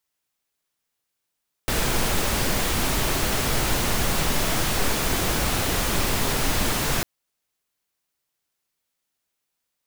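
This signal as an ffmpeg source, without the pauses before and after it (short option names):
-f lavfi -i "anoisesrc=c=pink:a=0.385:d=5.35:r=44100:seed=1"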